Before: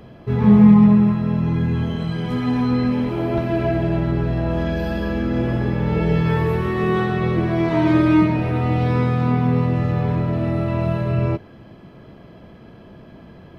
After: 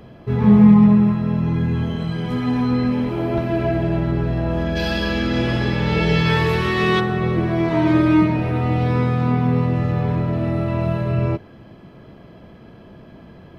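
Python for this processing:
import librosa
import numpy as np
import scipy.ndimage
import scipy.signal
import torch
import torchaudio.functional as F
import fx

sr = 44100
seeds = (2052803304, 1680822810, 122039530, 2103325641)

y = fx.peak_eq(x, sr, hz=4400.0, db=15.0, octaves=2.4, at=(4.75, 6.99), fade=0.02)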